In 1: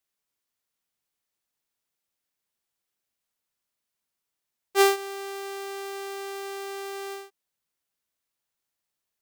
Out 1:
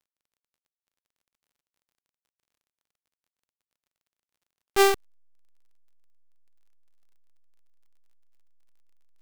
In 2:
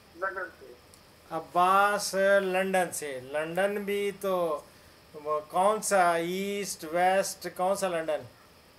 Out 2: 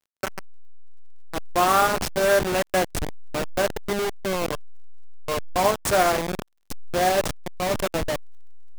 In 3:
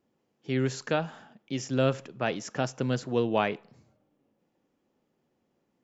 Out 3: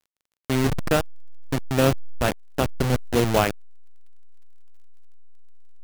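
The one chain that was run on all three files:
send-on-delta sampling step -23 dBFS; crackle 35 per s -58 dBFS; normalise loudness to -24 LUFS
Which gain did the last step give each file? 0.0 dB, +4.5 dB, +6.5 dB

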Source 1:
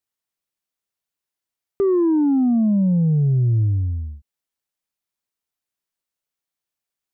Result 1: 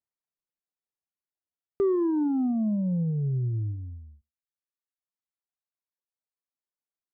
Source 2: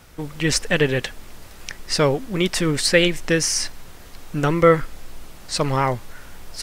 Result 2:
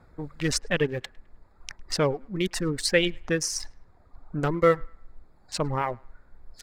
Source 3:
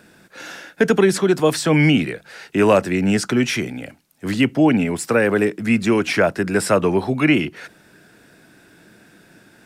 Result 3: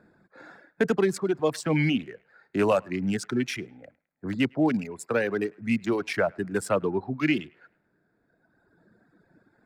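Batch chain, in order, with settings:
local Wiener filter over 15 samples; band-passed feedback delay 105 ms, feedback 40%, band-pass 1.5 kHz, level -14.5 dB; reverb removal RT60 2 s; normalise loudness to -27 LUFS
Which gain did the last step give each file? -5.0 dB, -5.0 dB, -7.0 dB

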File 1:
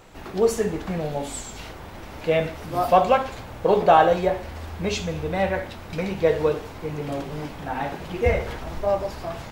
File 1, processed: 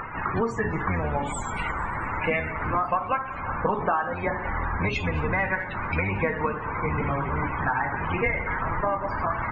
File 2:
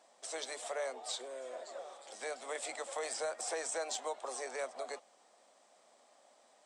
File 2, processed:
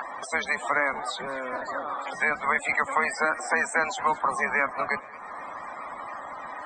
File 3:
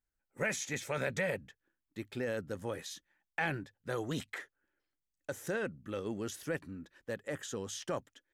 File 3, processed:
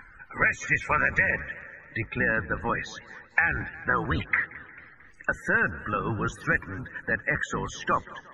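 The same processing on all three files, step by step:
octave divider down 1 oct, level +3 dB; treble shelf 7 kHz -6.5 dB; upward compressor, threshold -38 dBFS; tape echo 178 ms, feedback 66%, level -23.5 dB, low-pass 4.7 kHz; loudest bins only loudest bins 64; high-order bell 1.5 kHz +16 dB; compression 10:1, threshold -24 dBFS; modulated delay 223 ms, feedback 54%, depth 180 cents, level -21 dB; normalise loudness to -27 LUFS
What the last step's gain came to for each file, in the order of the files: +2.0 dB, +7.0 dB, +5.0 dB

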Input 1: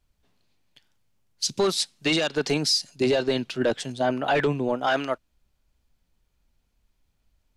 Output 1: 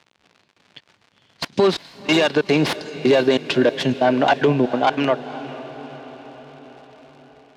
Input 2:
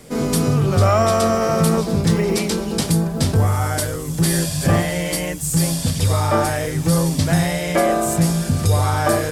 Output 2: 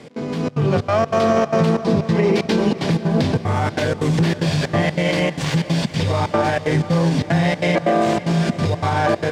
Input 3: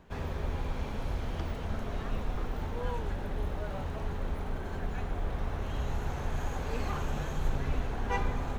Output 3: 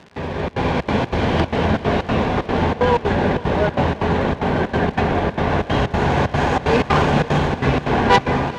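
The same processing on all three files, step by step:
tracing distortion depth 0.19 ms; band-stop 1.3 kHz, Q 7.6; compression 5:1, threshold -27 dBFS; peak limiter -22 dBFS; level rider gain up to 10.5 dB; trance gate "x.xxxx.xxx.x" 187 bpm -24 dB; crackle 150 per s -40 dBFS; band-pass 130–3900 Hz; echo that smears into a reverb 490 ms, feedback 59%, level -15 dB; normalise loudness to -19 LUFS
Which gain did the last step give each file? +5.0 dB, +4.5 dB, +12.5 dB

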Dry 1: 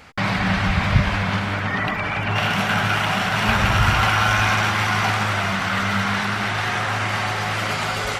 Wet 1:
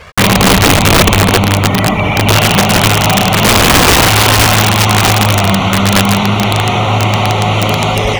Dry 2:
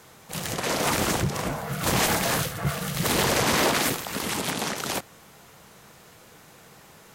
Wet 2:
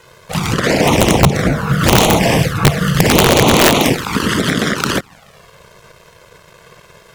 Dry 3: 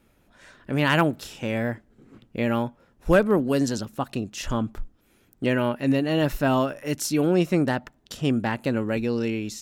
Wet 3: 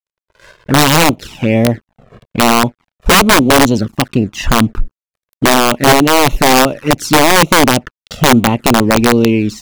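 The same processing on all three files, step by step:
low-pass 2.6 kHz 6 dB/octave; in parallel at 0 dB: compression 8:1, threshold -29 dBFS; on the sum: crossover distortion -47 dBFS; touch-sensitive flanger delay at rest 2 ms, full sweep at -18.5 dBFS; integer overflow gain 15 dB; peak normalisation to -1.5 dBFS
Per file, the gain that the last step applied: +13.5 dB, +13.5 dB, +13.5 dB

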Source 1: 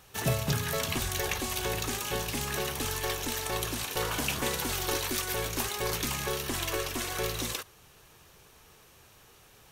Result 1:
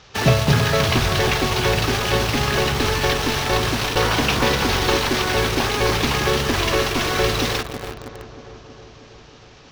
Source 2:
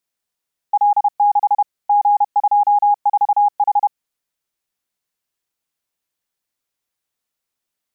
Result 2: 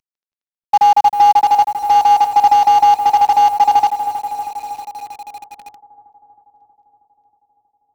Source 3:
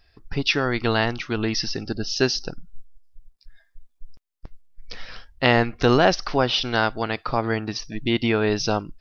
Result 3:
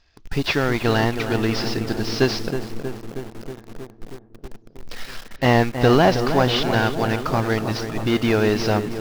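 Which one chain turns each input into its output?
CVSD coder 32 kbps; filtered feedback delay 318 ms, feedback 74%, low-pass 1.9 kHz, level -8.5 dB; in parallel at -3 dB: bit crusher 6-bit; on the sum: peak normalisation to -3 dBFS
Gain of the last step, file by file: +8.5 dB, 0.0 dB, -2.0 dB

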